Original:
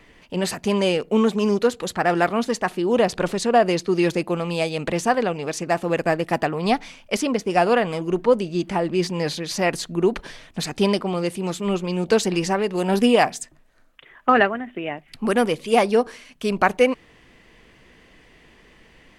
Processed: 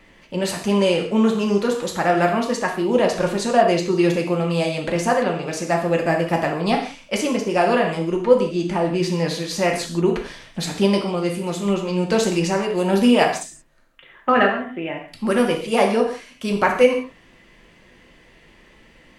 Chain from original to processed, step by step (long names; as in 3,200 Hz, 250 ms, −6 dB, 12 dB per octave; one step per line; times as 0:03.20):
reverb whose tail is shaped and stops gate 200 ms falling, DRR 0.5 dB
level −1.5 dB